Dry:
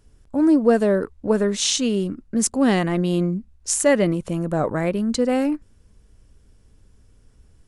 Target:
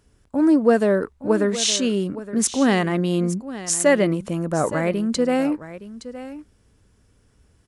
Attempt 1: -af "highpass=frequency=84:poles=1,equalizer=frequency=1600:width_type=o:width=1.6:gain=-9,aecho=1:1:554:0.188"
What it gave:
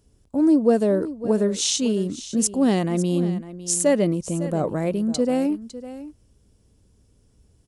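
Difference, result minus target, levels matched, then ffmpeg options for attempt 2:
2,000 Hz band −9.0 dB; echo 313 ms early
-af "highpass=frequency=84:poles=1,equalizer=frequency=1600:width_type=o:width=1.6:gain=2.5,aecho=1:1:867:0.188"

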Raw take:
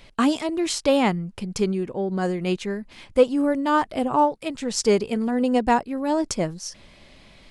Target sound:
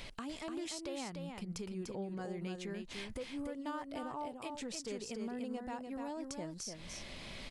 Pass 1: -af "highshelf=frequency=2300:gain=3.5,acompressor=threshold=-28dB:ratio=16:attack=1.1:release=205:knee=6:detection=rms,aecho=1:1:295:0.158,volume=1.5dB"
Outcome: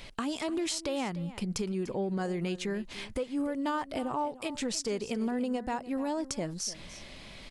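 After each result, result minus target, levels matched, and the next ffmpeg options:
downward compressor: peak gain reduction −10.5 dB; echo-to-direct −11 dB
-af "highshelf=frequency=2300:gain=3.5,acompressor=threshold=-39dB:ratio=16:attack=1.1:release=205:knee=6:detection=rms,aecho=1:1:295:0.158,volume=1.5dB"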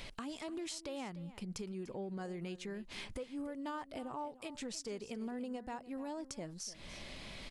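echo-to-direct −11 dB
-af "highshelf=frequency=2300:gain=3.5,acompressor=threshold=-39dB:ratio=16:attack=1.1:release=205:knee=6:detection=rms,aecho=1:1:295:0.562,volume=1.5dB"

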